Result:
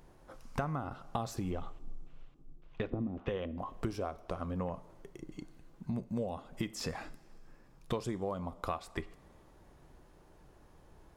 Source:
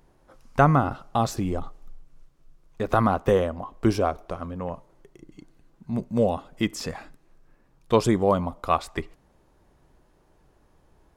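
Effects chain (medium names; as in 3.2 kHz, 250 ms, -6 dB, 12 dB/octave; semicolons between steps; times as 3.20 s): 1.51–3.58 s: LFO low-pass square 1.8 Hz 300–3000 Hz; compression 10:1, threshold -34 dBFS, peak gain reduction 21 dB; two-slope reverb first 0.47 s, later 2.9 s, from -16 dB, DRR 15 dB; trim +1 dB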